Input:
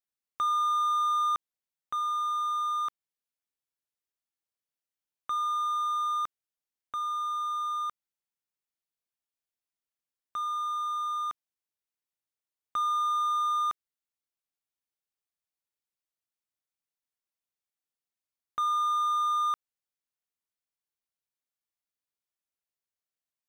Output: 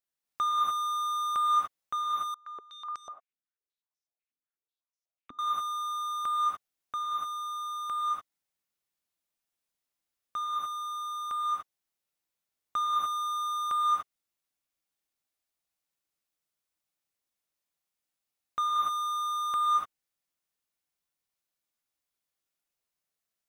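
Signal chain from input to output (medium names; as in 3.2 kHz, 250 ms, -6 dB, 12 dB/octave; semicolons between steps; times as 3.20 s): gated-style reverb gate 320 ms rising, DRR -3.5 dB; 2.34–5.39 s: step-sequenced band-pass 8.1 Hz 270–5800 Hz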